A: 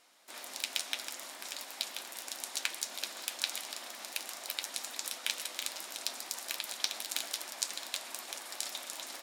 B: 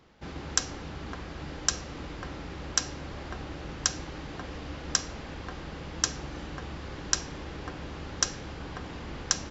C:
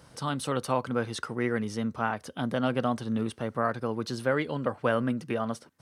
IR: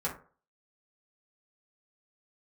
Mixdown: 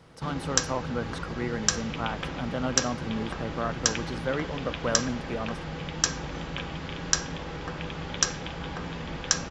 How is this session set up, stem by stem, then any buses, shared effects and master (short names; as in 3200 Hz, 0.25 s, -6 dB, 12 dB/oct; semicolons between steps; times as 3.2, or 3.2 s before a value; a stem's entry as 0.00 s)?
-0.5 dB, 1.30 s, no send, steep low-pass 3500 Hz 96 dB/oct
0.0 dB, 0.00 s, send -7.5 dB, dry
-3.0 dB, 0.00 s, no send, high shelf 4700 Hz -9 dB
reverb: on, RT60 0.40 s, pre-delay 3 ms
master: dry